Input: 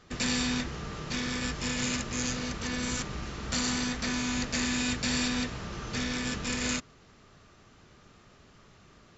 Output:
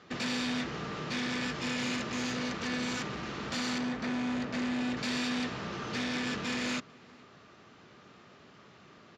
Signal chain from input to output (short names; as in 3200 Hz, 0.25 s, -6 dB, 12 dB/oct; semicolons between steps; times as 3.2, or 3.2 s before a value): 3.78–4.97 high shelf 2200 Hz -12 dB; overloaded stage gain 32 dB; BPF 160–4500 Hz; outdoor echo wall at 76 m, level -25 dB; gain +3 dB